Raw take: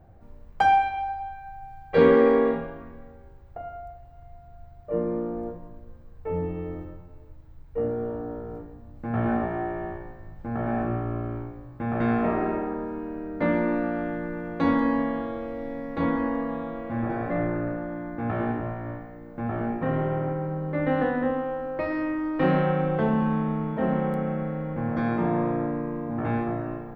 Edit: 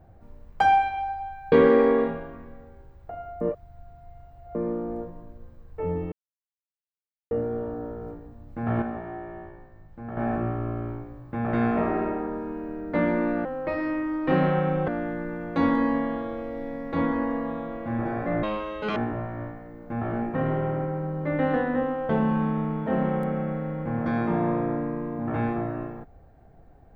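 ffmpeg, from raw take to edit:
-filter_complex "[0:a]asplit=13[a][b][c][d][e][f][g][h][i][j][k][l][m];[a]atrim=end=1.522[n];[b]atrim=start=1.988:end=3.882[o];[c]atrim=start=3.878:end=5.022,asetpts=PTS-STARTPTS,areverse[p];[d]atrim=start=5.018:end=6.59,asetpts=PTS-STARTPTS,afade=t=out:st=1.568:d=0.004:c=hsin[q];[e]atrim=start=6.59:end=7.78,asetpts=PTS-STARTPTS,volume=0[r];[f]atrim=start=7.78:end=9.292,asetpts=PTS-STARTPTS,afade=t=in:d=0.004:c=hsin[s];[g]atrim=start=9.288:end=10.642,asetpts=PTS-STARTPTS,volume=-7dB[t];[h]atrim=start=10.638:end=13.922[u];[i]atrim=start=21.568:end=23.002[v];[j]atrim=start=13.918:end=17.474[w];[k]atrim=start=17.47:end=18.44,asetpts=PTS-STARTPTS,asetrate=80262,aresample=44100[x];[l]atrim=start=18.436:end=21.572[y];[m]atrim=start=22.998[z];[n][o]acrossfade=d=0.004:c1=hsin:c2=hsin[aa];[aa][p]acrossfade=d=0.004:c1=hsin:c2=hsin[ab];[q][r][s]concat=n=3:v=0:a=1[ac];[ab][ac]acrossfade=d=0.004:c1=hsin:c2=hsin[ad];[ad][t]acrossfade=d=0.004:c1=hsin:c2=hsin[ae];[ae][u]acrossfade=d=0.004:c1=hsin:c2=hsin[af];[af][v]acrossfade=d=0.004:c1=hsin:c2=hsin[ag];[ag][w]acrossfade=d=0.004:c1=hsin:c2=hsin[ah];[ah][x]acrossfade=d=0.004:c1=hsin:c2=hsin[ai];[ai][y]acrossfade=d=0.004:c1=hsin:c2=hsin[aj];[aj][z]acrossfade=d=0.004:c1=hsin:c2=hsin"

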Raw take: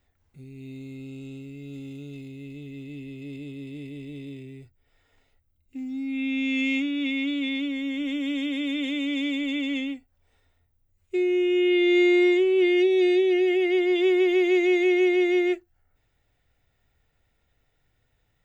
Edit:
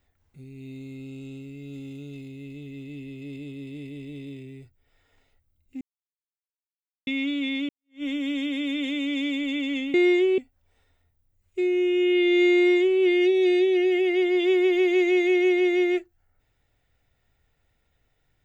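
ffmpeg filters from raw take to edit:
-filter_complex "[0:a]asplit=6[a][b][c][d][e][f];[a]atrim=end=5.81,asetpts=PTS-STARTPTS,afade=t=out:st=5.806:d=0.004:c=hsin[g];[b]atrim=start=5.81:end=7.07,asetpts=PTS-STARTPTS,volume=0[h];[c]atrim=start=7.07:end=7.69,asetpts=PTS-STARTPTS,afade=t=in:d=0.004:c=hsin,afade=t=out:st=0.616:d=0.004:c=hsin[i];[d]atrim=start=7.69:end=9.942,asetpts=PTS-STARTPTS,afade=t=in:d=0.34:c=exp[j];[e]atrim=start=12.118:end=12.562[k];[f]atrim=start=9.938[l];[g][h][i][j]concat=n=4:v=0:a=1[m];[m][k]acrossfade=d=0.004:c1=hsin:c2=hsin[n];[n][l]acrossfade=d=0.004:c1=hsin:c2=hsin"

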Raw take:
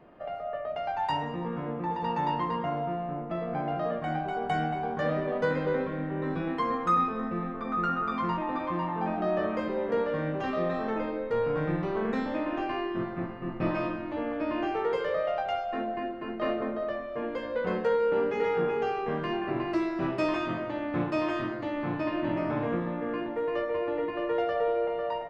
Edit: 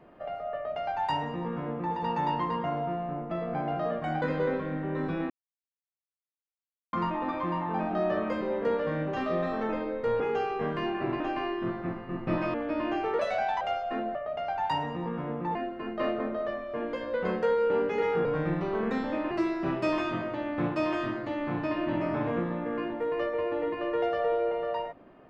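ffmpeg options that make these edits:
-filter_complex "[0:a]asplit=13[a][b][c][d][e][f][g][h][i][j][k][l][m];[a]atrim=end=4.222[n];[b]atrim=start=5.488:end=6.57,asetpts=PTS-STARTPTS,afade=t=out:st=1.078:d=0.004:c=hsin[o];[c]atrim=start=6.57:end=8.2,asetpts=PTS-STARTPTS,volume=0[p];[d]atrim=start=8.2:end=11.472,asetpts=PTS-STARTPTS,afade=t=in:d=0.004:c=hsin[q];[e]atrim=start=18.668:end=19.672[r];[f]atrim=start=12.528:end=13.872[s];[g]atrim=start=14.248:end=14.904[t];[h]atrim=start=14.9:end=15.43,asetpts=PTS-STARTPTS,asetrate=55566,aresample=44100[u];[i]atrim=start=15.426:end=15.972[v];[j]atrim=start=0.538:end=1.942[w];[k]atrim=start=15.968:end=18.672[x];[l]atrim=start=11.468:end=12.532[y];[m]atrim=start=19.668[z];[o][p][q]concat=n=3:v=0:a=1[aa];[n][aa]acrossfade=d=0.004:c1=hsin:c2=hsin[ab];[ab][r]acrossfade=d=0.004:c1=hsin:c2=hsin[ac];[ac][s]acrossfade=d=0.004:c1=hsin:c2=hsin[ad];[ad][t]acrossfade=d=0.004:c1=hsin:c2=hsin[ae];[ae][u]acrossfade=d=0.004:c1=hsin:c2=hsin[af];[af][v]acrossfade=d=0.004:c1=hsin:c2=hsin[ag];[ag][w]acrossfade=d=0.004:c1=hsin:c2=hsin[ah];[ah][x]acrossfade=d=0.004:c1=hsin:c2=hsin[ai];[ai][y]acrossfade=d=0.004:c1=hsin:c2=hsin[aj];[aj][z]acrossfade=d=0.004:c1=hsin:c2=hsin"

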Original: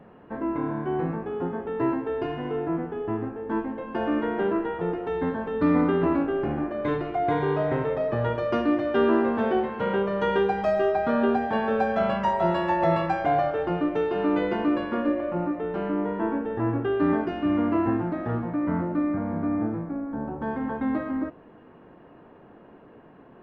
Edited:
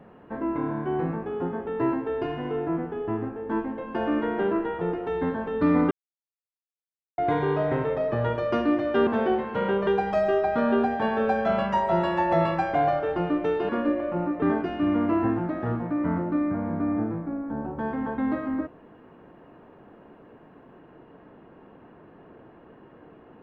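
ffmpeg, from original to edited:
-filter_complex "[0:a]asplit=7[a][b][c][d][e][f][g];[a]atrim=end=5.91,asetpts=PTS-STARTPTS,afade=t=out:st=5.906:d=0.004:c=hsin[h];[b]atrim=start=5.91:end=7.18,asetpts=PTS-STARTPTS,volume=0[i];[c]atrim=start=7.18:end=9.072,asetpts=PTS-STARTPTS,afade=t=in:d=0.004:c=hsin[j];[d]atrim=start=9.318:end=10.122[k];[e]atrim=start=10.378:end=14.202[l];[f]atrim=start=14.888:end=15.622[m];[g]atrim=start=17.048[n];[h][i][j]concat=n=3:v=0:a=1[o];[o][k]acrossfade=d=0.004:c1=hsin:c2=hsin[p];[p][l]acrossfade=d=0.004:c1=hsin:c2=hsin[q];[q][m]acrossfade=d=0.004:c1=hsin:c2=hsin[r];[r][n]acrossfade=d=0.004:c1=hsin:c2=hsin"

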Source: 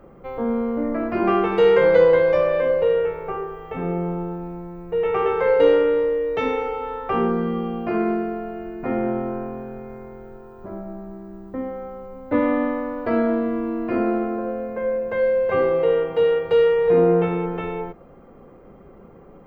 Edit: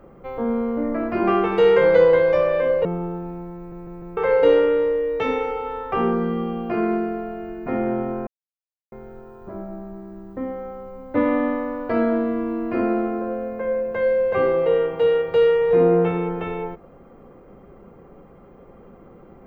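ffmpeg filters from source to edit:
-filter_complex "[0:a]asplit=8[a][b][c][d][e][f][g][h];[a]atrim=end=2.852[i];[b]atrim=start=4.018:end=4.892[j];[c]atrim=start=4.738:end=4.892[k];[d]atrim=start=4.738:end=4.892[l];[e]atrim=start=4.738:end=4.892[m];[f]atrim=start=5.338:end=9.44,asetpts=PTS-STARTPTS,afade=t=out:st=4.098:d=0.004:c=hsin[n];[g]atrim=start=9.44:end=10.09,asetpts=PTS-STARTPTS,volume=0[o];[h]atrim=start=10.09,asetpts=PTS-STARTPTS,afade=t=in:d=0.004:c=hsin[p];[i][j]acrossfade=d=0.004:c1=hsin:c2=hsin[q];[q][k]acrossfade=d=0.004:c1=hsin:c2=hsin[r];[r][l]acrossfade=d=0.004:c1=hsin:c2=hsin[s];[s][m]acrossfade=d=0.004:c1=hsin:c2=hsin[t];[n][o][p]concat=n=3:v=0:a=1[u];[t][u]acrossfade=d=0.004:c1=hsin:c2=hsin"

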